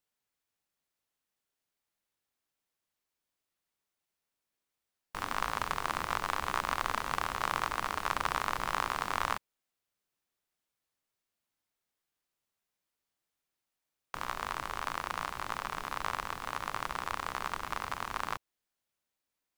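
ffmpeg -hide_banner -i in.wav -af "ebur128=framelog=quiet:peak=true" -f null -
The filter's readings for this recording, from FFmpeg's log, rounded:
Integrated loudness:
  I:         -35.0 LUFS
  Threshold: -45.1 LUFS
Loudness range:
  LRA:        10.5 LU
  Threshold: -56.6 LUFS
  LRA low:   -43.7 LUFS
  LRA high:  -33.2 LUFS
True peak:
  Peak:      -13.0 dBFS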